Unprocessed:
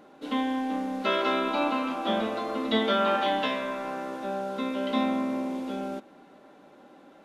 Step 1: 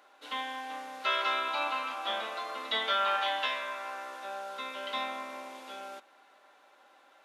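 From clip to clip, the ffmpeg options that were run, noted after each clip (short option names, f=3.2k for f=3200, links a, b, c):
-af "highpass=1k"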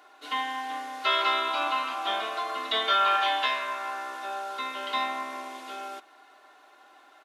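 -af "aecho=1:1:2.8:0.62,volume=3.5dB"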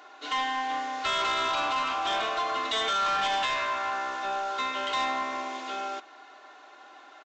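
-af "alimiter=limit=-19.5dB:level=0:latency=1:release=61,aresample=16000,asoftclip=type=tanh:threshold=-28dB,aresample=44100,volume=5dB"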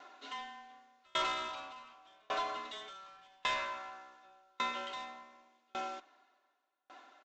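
-af "afreqshift=-22,aeval=exprs='val(0)*pow(10,-37*if(lt(mod(0.87*n/s,1),2*abs(0.87)/1000),1-mod(0.87*n/s,1)/(2*abs(0.87)/1000),(mod(0.87*n/s,1)-2*abs(0.87)/1000)/(1-2*abs(0.87)/1000))/20)':c=same,volume=-3dB"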